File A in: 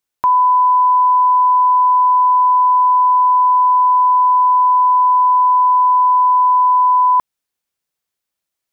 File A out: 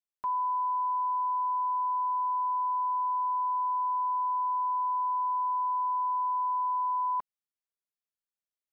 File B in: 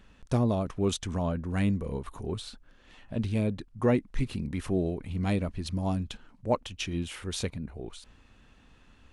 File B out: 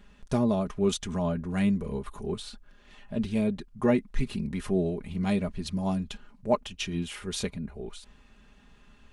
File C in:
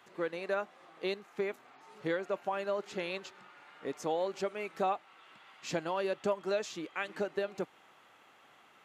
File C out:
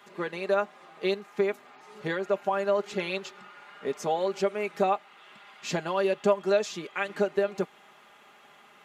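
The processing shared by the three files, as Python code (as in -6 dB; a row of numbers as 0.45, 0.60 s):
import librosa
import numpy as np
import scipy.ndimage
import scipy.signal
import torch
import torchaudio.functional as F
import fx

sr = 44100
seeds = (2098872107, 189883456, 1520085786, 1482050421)

y = x + 0.61 * np.pad(x, (int(4.9 * sr / 1000.0), 0))[:len(x)]
y = y * 10.0 ** (-30 / 20.0) / np.sqrt(np.mean(np.square(y)))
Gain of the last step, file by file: -21.5, -0.5, +4.5 dB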